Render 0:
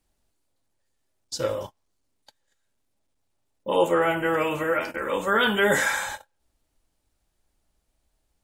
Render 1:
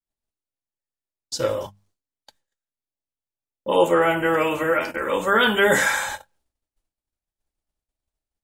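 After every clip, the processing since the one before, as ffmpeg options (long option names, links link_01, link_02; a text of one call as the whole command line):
ffmpeg -i in.wav -af "bandreject=frequency=50:width_type=h:width=6,bandreject=frequency=100:width_type=h:width=6,bandreject=frequency=150:width_type=h:width=6,bandreject=frequency=200:width_type=h:width=6,agate=range=-33dB:threshold=-59dB:ratio=3:detection=peak,volume=3.5dB" out.wav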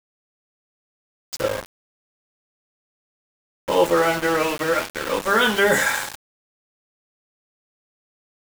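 ffmpeg -i in.wav -af "aeval=exprs='val(0)*gte(abs(val(0)),0.0631)':channel_layout=same" out.wav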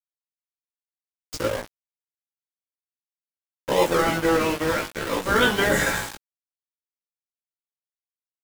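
ffmpeg -i in.wav -filter_complex "[0:a]asplit=2[link_01][link_02];[link_02]acrusher=samples=41:mix=1:aa=0.000001:lfo=1:lforange=24.6:lforate=2.3,volume=-5.5dB[link_03];[link_01][link_03]amix=inputs=2:normalize=0,flanger=delay=16:depth=3.1:speed=0.54" out.wav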